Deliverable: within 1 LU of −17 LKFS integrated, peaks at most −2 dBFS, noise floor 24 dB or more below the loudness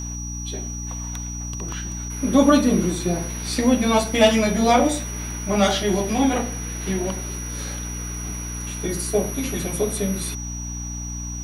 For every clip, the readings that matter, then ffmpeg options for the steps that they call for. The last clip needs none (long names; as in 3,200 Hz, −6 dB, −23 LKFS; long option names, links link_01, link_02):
mains hum 60 Hz; hum harmonics up to 300 Hz; level of the hum −29 dBFS; interfering tone 5,800 Hz; level of the tone −33 dBFS; integrated loudness −22.5 LKFS; sample peak −2.5 dBFS; target loudness −17.0 LKFS
→ -af "bandreject=frequency=60:width_type=h:width=4,bandreject=frequency=120:width_type=h:width=4,bandreject=frequency=180:width_type=h:width=4,bandreject=frequency=240:width_type=h:width=4,bandreject=frequency=300:width_type=h:width=4"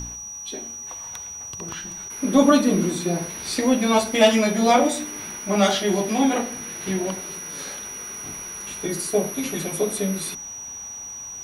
mains hum none found; interfering tone 5,800 Hz; level of the tone −33 dBFS
→ -af "bandreject=frequency=5800:width=30"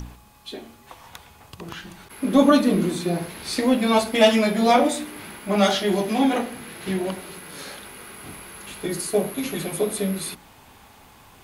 interfering tone none found; integrated loudness −21.5 LKFS; sample peak −3.5 dBFS; target loudness −17.0 LKFS
→ -af "volume=4.5dB,alimiter=limit=-2dB:level=0:latency=1"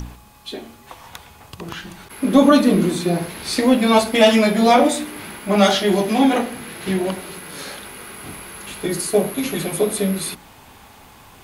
integrated loudness −17.5 LKFS; sample peak −2.0 dBFS; background noise floor −46 dBFS